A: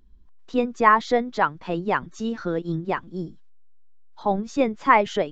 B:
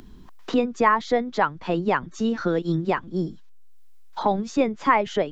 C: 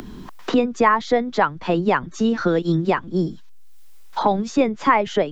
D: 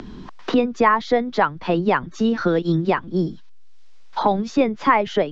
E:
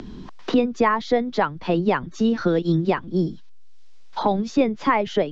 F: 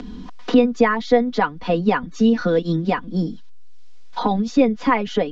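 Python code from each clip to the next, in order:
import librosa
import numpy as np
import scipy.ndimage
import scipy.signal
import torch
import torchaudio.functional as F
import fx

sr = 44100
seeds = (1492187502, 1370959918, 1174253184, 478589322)

y1 = fx.band_squash(x, sr, depth_pct=70)
y2 = fx.band_squash(y1, sr, depth_pct=40)
y2 = y2 * 10.0 ** (3.5 / 20.0)
y3 = scipy.signal.sosfilt(scipy.signal.butter(4, 5900.0, 'lowpass', fs=sr, output='sos'), y2)
y4 = fx.peak_eq(y3, sr, hz=1300.0, db=-4.5, octaves=2.0)
y5 = y4 + 0.75 * np.pad(y4, (int(4.1 * sr / 1000.0), 0))[:len(y4)]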